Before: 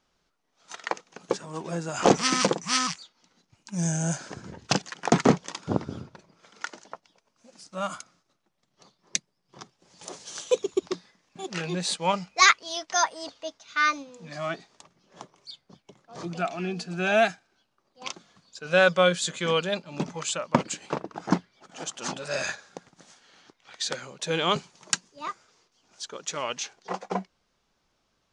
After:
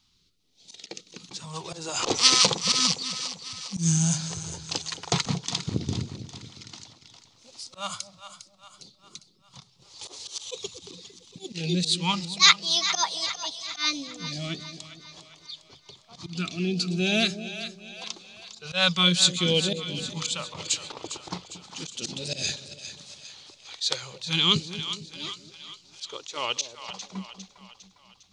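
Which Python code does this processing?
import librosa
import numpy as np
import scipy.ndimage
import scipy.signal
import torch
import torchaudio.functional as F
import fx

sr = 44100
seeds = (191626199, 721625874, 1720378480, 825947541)

y = fx.graphic_eq_15(x, sr, hz=(100, 630, 1600, 4000), db=(7, -7, -11, 9))
y = fx.auto_swell(y, sr, attack_ms=126.0)
y = fx.phaser_stages(y, sr, stages=2, low_hz=170.0, high_hz=1200.0, hz=0.37, feedback_pct=0)
y = fx.echo_split(y, sr, split_hz=640.0, low_ms=227, high_ms=404, feedback_pct=52, wet_db=-11.0)
y = y * 10.0 ** (5.5 / 20.0)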